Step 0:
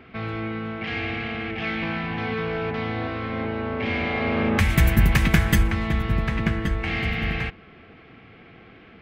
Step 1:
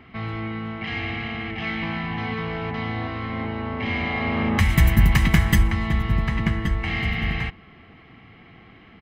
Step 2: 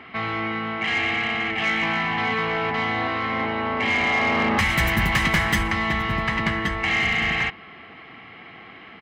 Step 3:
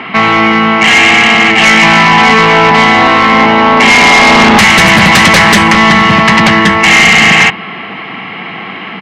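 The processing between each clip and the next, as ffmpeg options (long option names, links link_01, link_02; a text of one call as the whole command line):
ffmpeg -i in.wav -af "aecho=1:1:1:0.43,volume=-1dB" out.wav
ffmpeg -i in.wav -filter_complex "[0:a]asplit=2[link_01][link_02];[link_02]highpass=frequency=720:poles=1,volume=24dB,asoftclip=type=tanh:threshold=-1dB[link_03];[link_01][link_03]amix=inputs=2:normalize=0,lowpass=frequency=3700:poles=1,volume=-6dB,volume=-8dB" out.wav
ffmpeg -i in.wav -af "highpass=frequency=100:width=0.5412,highpass=frequency=100:width=1.3066,equalizer=frequency=110:width_type=q:width=4:gain=-5,equalizer=frequency=190:width_type=q:width=4:gain=7,equalizer=frequency=950:width_type=q:width=4:gain=6,equalizer=frequency=2700:width_type=q:width=4:gain=4,lowpass=frequency=9900:width=0.5412,lowpass=frequency=9900:width=1.3066,aeval=exprs='0.473*sin(PI/2*3.16*val(0)/0.473)':channel_layout=same,volume=5.5dB" out.wav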